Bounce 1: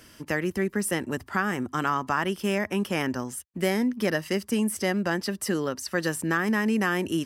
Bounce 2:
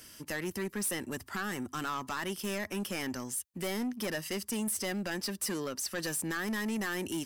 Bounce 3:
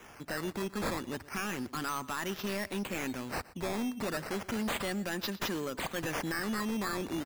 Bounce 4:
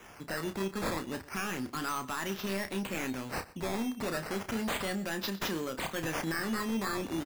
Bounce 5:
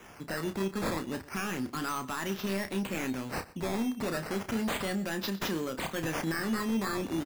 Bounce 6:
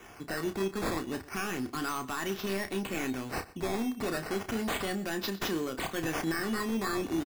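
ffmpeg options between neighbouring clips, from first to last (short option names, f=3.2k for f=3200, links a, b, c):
-af "highshelf=f=3.5k:g=11.5,asoftclip=type=tanh:threshold=-23dB,volume=-6dB"
-af "acrusher=samples=10:mix=1:aa=0.000001:lfo=1:lforange=10:lforate=0.33,aecho=1:1:121:0.106"
-filter_complex "[0:a]asplit=2[a][b];[b]adelay=31,volume=-8.5dB[c];[a][c]amix=inputs=2:normalize=0"
-af "equalizer=f=200:w=0.56:g=3"
-af "aecho=1:1:2.7:0.31"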